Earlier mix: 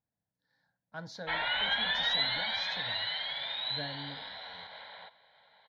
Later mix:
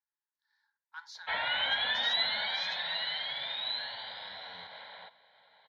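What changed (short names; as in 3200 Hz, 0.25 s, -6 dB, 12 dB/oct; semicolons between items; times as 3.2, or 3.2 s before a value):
speech: add brick-wall FIR high-pass 820 Hz; master: add HPF 77 Hz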